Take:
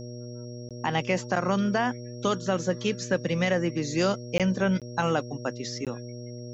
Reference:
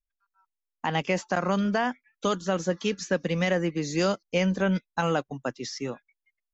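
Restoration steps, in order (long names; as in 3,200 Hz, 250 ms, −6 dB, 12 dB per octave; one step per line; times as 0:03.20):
hum removal 121 Hz, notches 5
notch filter 5,600 Hz, Q 30
repair the gap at 0:00.69/0:04.38/0:04.80/0:05.85, 17 ms
level correction −3.5 dB, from 0:05.96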